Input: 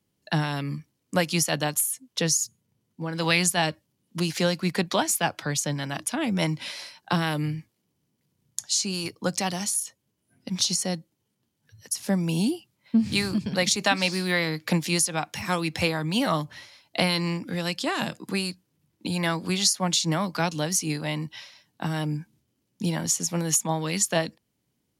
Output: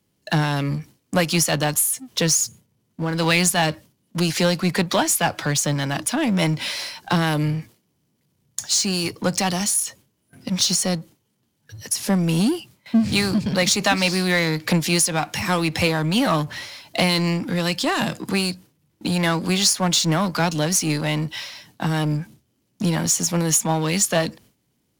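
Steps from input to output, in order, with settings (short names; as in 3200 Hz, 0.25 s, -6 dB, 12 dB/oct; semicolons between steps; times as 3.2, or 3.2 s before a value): gate with hold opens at -54 dBFS; power-law curve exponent 0.7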